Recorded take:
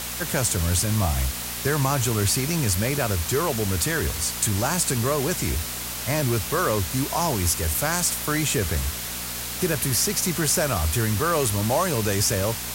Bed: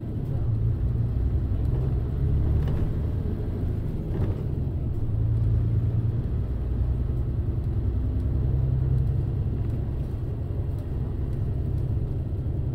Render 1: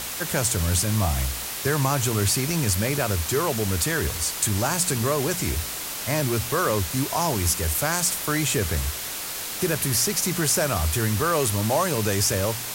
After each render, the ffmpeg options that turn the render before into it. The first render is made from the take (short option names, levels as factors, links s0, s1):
-af "bandreject=f=60:t=h:w=4,bandreject=f=120:t=h:w=4,bandreject=f=180:t=h:w=4,bandreject=f=240:t=h:w=4"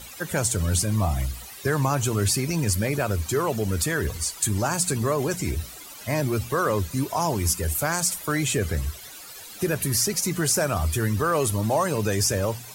-af "afftdn=nr=15:nf=-32"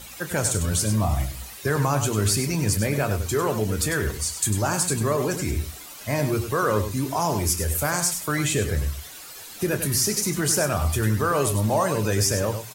-filter_complex "[0:a]asplit=2[s0][s1];[s1]adelay=28,volume=0.282[s2];[s0][s2]amix=inputs=2:normalize=0,aecho=1:1:99:0.355"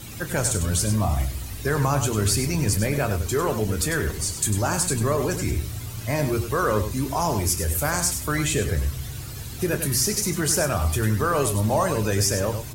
-filter_complex "[1:a]volume=0.316[s0];[0:a][s0]amix=inputs=2:normalize=0"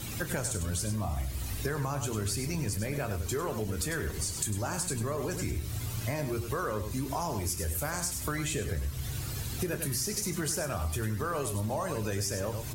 -af "acompressor=threshold=0.0316:ratio=5"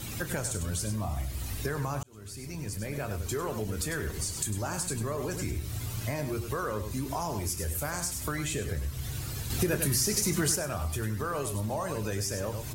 -filter_complex "[0:a]asettb=1/sr,asplit=3[s0][s1][s2];[s0]atrim=end=9.504[s3];[s1]atrim=start=9.5:end=10.56,asetpts=PTS-STARTPTS,afade=t=in:d=0.004:c=qsin,afade=t=out:st=1.056:d=0.004:c=qsin,acontrast=23[s4];[s2]atrim=start=10.556[s5];[s3][s4]acrossfade=d=0.004:c1=hsin:c2=qsin[s6];[s6][s5]acrossfade=d=0.004:c1=qsin:c2=hsin,asplit=2[s7][s8];[s7]atrim=end=2.03,asetpts=PTS-STARTPTS,afade=t=out:st=2.026:d=0.004:c=hsin[s9];[s8]atrim=start=2.03,asetpts=PTS-STARTPTS,afade=t=in:d=1.5:c=qsin[s10];[s9][s10]concat=n=2:v=0:a=1"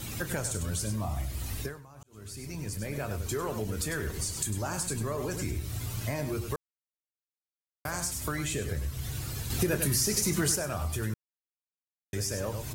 -filter_complex "[0:a]asplit=7[s0][s1][s2][s3][s4][s5][s6];[s0]atrim=end=1.85,asetpts=PTS-STARTPTS,afade=t=out:st=1.61:d=0.24:c=qua:silence=0.105925[s7];[s1]atrim=start=1.85:end=1.93,asetpts=PTS-STARTPTS,volume=0.106[s8];[s2]atrim=start=1.93:end=6.56,asetpts=PTS-STARTPTS,afade=t=in:d=0.24:c=qua:silence=0.105925,afade=t=out:st=4.626:d=0.004:c=hsin[s9];[s3]atrim=start=6.56:end=7.85,asetpts=PTS-STARTPTS,volume=0[s10];[s4]atrim=start=7.85:end=11.14,asetpts=PTS-STARTPTS,afade=t=in:d=0.004:c=hsin,afade=t=out:st=3.286:d=0.004:c=hsin[s11];[s5]atrim=start=11.14:end=12.13,asetpts=PTS-STARTPTS,volume=0[s12];[s6]atrim=start=12.13,asetpts=PTS-STARTPTS,afade=t=in:d=0.004:c=hsin[s13];[s7][s8][s9][s10][s11][s12][s13]concat=n=7:v=0:a=1"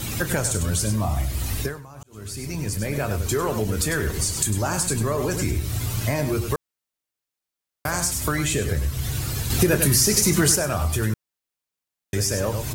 -af "volume=2.82"